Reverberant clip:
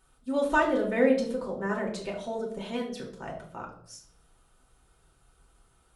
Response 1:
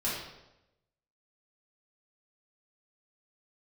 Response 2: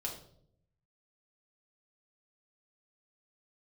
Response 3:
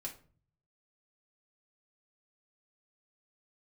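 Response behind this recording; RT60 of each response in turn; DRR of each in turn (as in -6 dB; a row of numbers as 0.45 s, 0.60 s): 2; 0.95 s, 0.70 s, 0.45 s; -9.0 dB, -2.0 dB, -1.5 dB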